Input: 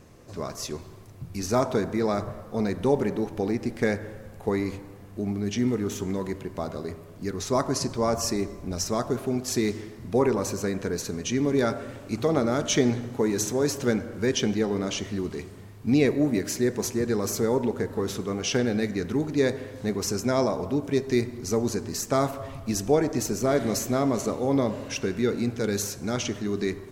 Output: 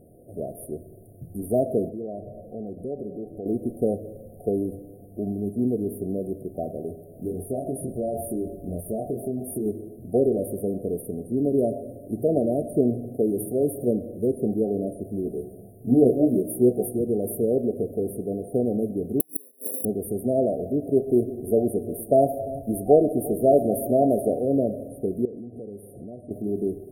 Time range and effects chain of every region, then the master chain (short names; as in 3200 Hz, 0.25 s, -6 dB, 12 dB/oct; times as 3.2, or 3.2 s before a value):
1.89–3.46 high shelf 7100 Hz -9.5 dB + compressor 2:1, threshold -38 dBFS
7.13–9.66 doubler 23 ms -3 dB + compressor 10:1, threshold -24 dBFS
15.25–16.99 bell 970 Hz +8 dB 0.6 oct + doubler 16 ms -2.5 dB
19.2–19.85 steep high-pass 170 Hz + flipped gate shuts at -21 dBFS, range -38 dB + careless resampling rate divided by 8×, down filtered, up zero stuff
20.86–24.39 bell 930 Hz +7 dB 2 oct + echo 0.348 s -17.5 dB
25.25–26.31 compressor 12:1, threshold -34 dBFS + air absorption 52 m
whole clip: FFT band-reject 750–8900 Hz; low shelf 150 Hz -8.5 dB; gain +3 dB